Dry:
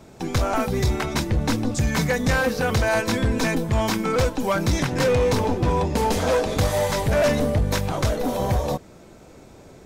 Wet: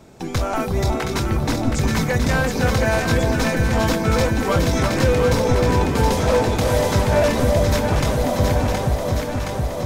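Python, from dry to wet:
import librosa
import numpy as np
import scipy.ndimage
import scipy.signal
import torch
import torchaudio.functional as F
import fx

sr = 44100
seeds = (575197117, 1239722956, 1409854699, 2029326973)

y = x + fx.echo_alternate(x, sr, ms=360, hz=1100.0, feedback_pct=85, wet_db=-3, dry=0)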